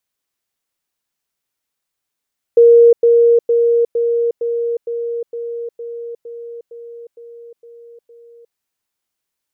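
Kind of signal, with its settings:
level staircase 469 Hz −4 dBFS, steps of −3 dB, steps 13, 0.36 s 0.10 s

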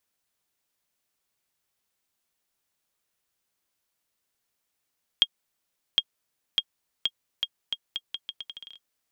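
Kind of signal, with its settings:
bouncing ball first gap 0.76 s, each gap 0.79, 3,250 Hz, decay 51 ms −7 dBFS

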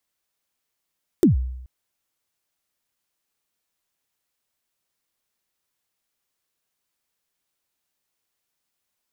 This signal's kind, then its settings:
synth kick length 0.43 s, from 400 Hz, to 63 Hz, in 129 ms, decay 0.86 s, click on, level −9 dB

